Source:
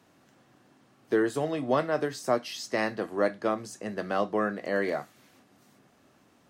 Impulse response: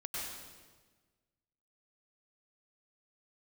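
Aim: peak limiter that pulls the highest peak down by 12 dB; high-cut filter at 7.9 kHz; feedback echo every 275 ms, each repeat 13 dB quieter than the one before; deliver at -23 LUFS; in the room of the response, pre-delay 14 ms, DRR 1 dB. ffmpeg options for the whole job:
-filter_complex "[0:a]lowpass=7900,alimiter=limit=0.0668:level=0:latency=1,aecho=1:1:275|550|825:0.224|0.0493|0.0108,asplit=2[s0][s1];[1:a]atrim=start_sample=2205,adelay=14[s2];[s1][s2]afir=irnorm=-1:irlink=0,volume=0.708[s3];[s0][s3]amix=inputs=2:normalize=0,volume=2.99"

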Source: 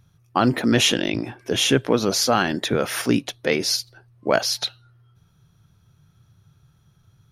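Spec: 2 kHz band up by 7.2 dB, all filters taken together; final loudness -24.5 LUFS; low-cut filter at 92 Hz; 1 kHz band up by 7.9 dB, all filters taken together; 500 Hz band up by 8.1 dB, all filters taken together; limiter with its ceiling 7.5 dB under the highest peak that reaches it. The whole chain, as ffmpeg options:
-af "highpass=92,equalizer=f=500:t=o:g=8,equalizer=f=1000:t=o:g=6,equalizer=f=2000:t=o:g=7,volume=0.473,alimiter=limit=0.299:level=0:latency=1"

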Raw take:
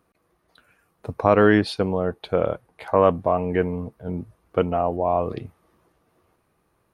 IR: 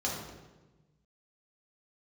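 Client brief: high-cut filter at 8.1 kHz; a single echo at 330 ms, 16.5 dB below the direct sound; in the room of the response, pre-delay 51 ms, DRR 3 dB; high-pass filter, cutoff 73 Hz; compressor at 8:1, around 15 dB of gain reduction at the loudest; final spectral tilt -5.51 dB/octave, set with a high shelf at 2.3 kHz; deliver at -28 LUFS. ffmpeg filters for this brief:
-filter_complex "[0:a]highpass=73,lowpass=8100,highshelf=f=2300:g=-3.5,acompressor=threshold=0.0447:ratio=8,aecho=1:1:330:0.15,asplit=2[s0][s1];[1:a]atrim=start_sample=2205,adelay=51[s2];[s1][s2]afir=irnorm=-1:irlink=0,volume=0.335[s3];[s0][s3]amix=inputs=2:normalize=0,volume=1.41"

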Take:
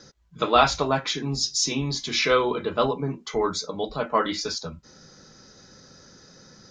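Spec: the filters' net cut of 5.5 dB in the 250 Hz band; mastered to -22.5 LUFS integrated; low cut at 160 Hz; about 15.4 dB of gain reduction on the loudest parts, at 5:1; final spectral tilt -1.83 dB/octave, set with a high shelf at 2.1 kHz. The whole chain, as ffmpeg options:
-af "highpass=160,equalizer=f=250:t=o:g=-6.5,highshelf=f=2100:g=8.5,acompressor=threshold=0.0355:ratio=5,volume=2.82"

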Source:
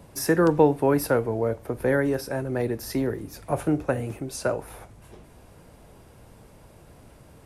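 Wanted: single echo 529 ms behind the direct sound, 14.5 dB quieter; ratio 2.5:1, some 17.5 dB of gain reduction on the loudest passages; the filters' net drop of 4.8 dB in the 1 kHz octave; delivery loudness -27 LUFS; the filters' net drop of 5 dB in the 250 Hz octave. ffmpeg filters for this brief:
-af "equalizer=f=250:t=o:g=-6.5,equalizer=f=1000:t=o:g=-6,acompressor=threshold=0.00708:ratio=2.5,aecho=1:1:529:0.188,volume=5.31"

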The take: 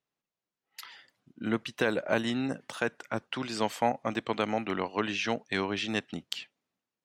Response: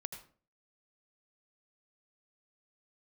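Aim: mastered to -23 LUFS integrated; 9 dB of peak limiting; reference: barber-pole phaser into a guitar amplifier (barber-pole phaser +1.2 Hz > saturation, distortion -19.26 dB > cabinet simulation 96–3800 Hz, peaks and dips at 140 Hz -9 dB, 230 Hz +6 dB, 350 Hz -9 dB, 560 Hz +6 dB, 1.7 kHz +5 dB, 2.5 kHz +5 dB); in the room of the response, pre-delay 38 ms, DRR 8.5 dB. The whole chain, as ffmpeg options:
-filter_complex "[0:a]alimiter=limit=0.106:level=0:latency=1,asplit=2[s0][s1];[1:a]atrim=start_sample=2205,adelay=38[s2];[s1][s2]afir=irnorm=-1:irlink=0,volume=0.473[s3];[s0][s3]amix=inputs=2:normalize=0,asplit=2[s4][s5];[s5]afreqshift=1.2[s6];[s4][s6]amix=inputs=2:normalize=1,asoftclip=threshold=0.0562,highpass=96,equalizer=f=140:t=q:w=4:g=-9,equalizer=f=230:t=q:w=4:g=6,equalizer=f=350:t=q:w=4:g=-9,equalizer=f=560:t=q:w=4:g=6,equalizer=f=1700:t=q:w=4:g=5,equalizer=f=2500:t=q:w=4:g=5,lowpass=f=3800:w=0.5412,lowpass=f=3800:w=1.3066,volume=3.98"

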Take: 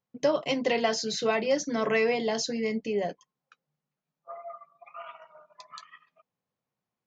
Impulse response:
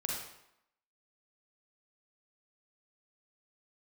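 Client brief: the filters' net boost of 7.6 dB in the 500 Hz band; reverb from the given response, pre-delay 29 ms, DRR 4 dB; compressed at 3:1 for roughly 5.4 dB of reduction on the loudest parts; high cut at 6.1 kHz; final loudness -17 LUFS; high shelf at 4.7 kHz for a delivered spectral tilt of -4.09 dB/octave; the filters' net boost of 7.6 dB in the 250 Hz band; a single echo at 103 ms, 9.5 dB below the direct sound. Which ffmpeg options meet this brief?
-filter_complex "[0:a]lowpass=6100,equalizer=f=250:t=o:g=7,equalizer=f=500:t=o:g=7,highshelf=f=4700:g=7.5,acompressor=threshold=0.1:ratio=3,aecho=1:1:103:0.335,asplit=2[s0][s1];[1:a]atrim=start_sample=2205,adelay=29[s2];[s1][s2]afir=irnorm=-1:irlink=0,volume=0.447[s3];[s0][s3]amix=inputs=2:normalize=0,volume=2"

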